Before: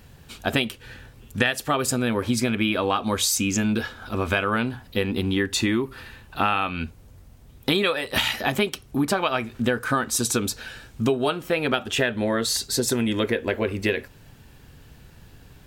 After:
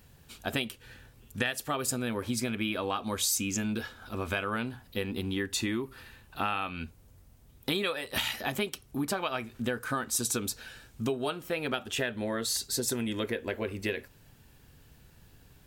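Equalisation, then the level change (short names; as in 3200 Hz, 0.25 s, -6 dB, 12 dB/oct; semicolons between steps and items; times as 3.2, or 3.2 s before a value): high shelf 7100 Hz +7 dB; -9.0 dB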